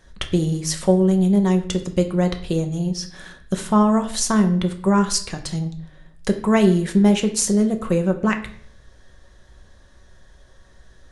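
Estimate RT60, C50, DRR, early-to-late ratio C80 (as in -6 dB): 0.55 s, 12.0 dB, 5.0 dB, 15.5 dB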